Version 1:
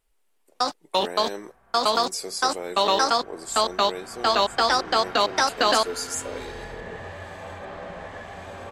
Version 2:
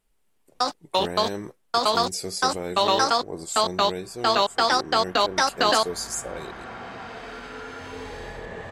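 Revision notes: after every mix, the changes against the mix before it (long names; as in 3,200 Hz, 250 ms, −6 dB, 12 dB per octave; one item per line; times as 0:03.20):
speech: remove high-pass filter 350 Hz 12 dB per octave
second sound: entry +1.65 s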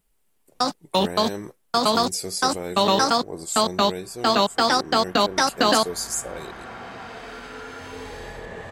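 first sound: add parametric band 180 Hz +14 dB 1.3 octaves
master: add high-shelf EQ 10,000 Hz +10 dB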